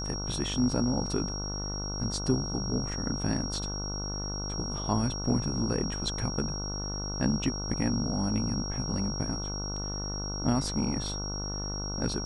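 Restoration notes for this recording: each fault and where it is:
buzz 50 Hz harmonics 30 -36 dBFS
tone 5600 Hz -36 dBFS

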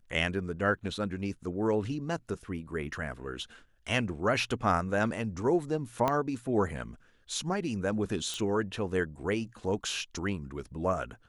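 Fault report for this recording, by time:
6.08 pop -14 dBFS
8.34 pop

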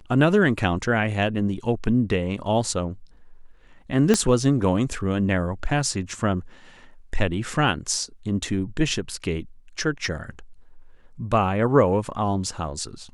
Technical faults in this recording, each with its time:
4.14 pop -6 dBFS

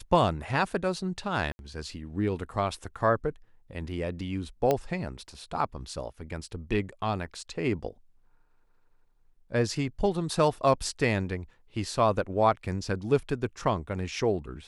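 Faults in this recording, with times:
1.52–1.59 gap 71 ms
4.71 pop -12 dBFS

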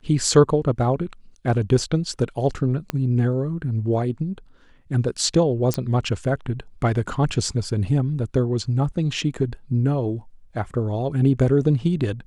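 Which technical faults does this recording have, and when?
2.9 pop -10 dBFS
5.74 pop -7 dBFS

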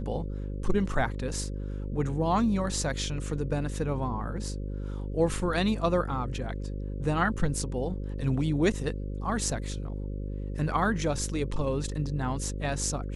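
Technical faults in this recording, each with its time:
buzz 50 Hz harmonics 11 -34 dBFS

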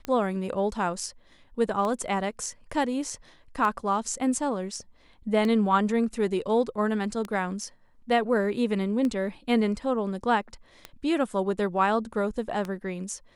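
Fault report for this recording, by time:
tick 33 1/3 rpm -18 dBFS

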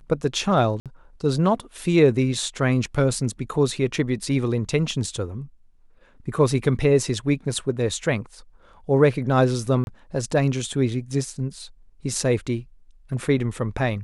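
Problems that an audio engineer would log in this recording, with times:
0.8–0.86 gap 57 ms
9.84–9.87 gap 31 ms

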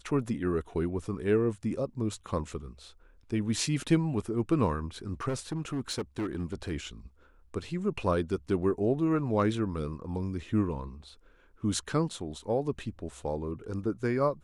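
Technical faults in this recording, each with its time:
5.28–6.72 clipped -28 dBFS

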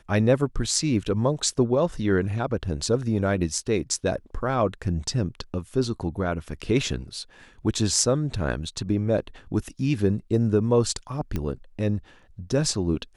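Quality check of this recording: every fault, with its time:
11.36 pop -15 dBFS

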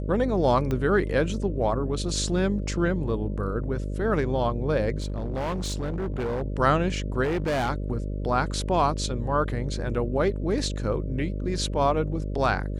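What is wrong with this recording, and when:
buzz 50 Hz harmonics 12 -30 dBFS
0.71 pop -16 dBFS
5–6.43 clipped -25 dBFS
7.23–7.7 clipped -22.5 dBFS

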